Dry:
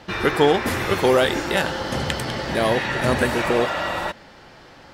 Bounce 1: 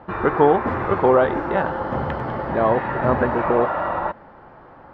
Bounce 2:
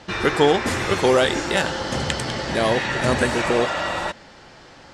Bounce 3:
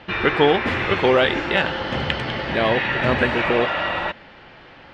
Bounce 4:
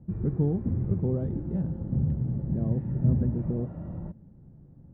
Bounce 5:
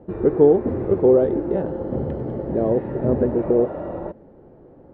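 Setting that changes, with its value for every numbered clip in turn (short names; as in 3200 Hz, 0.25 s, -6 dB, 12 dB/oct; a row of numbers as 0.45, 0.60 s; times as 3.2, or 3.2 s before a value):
synth low-pass, frequency: 1100, 7800, 2800, 160, 430 Hz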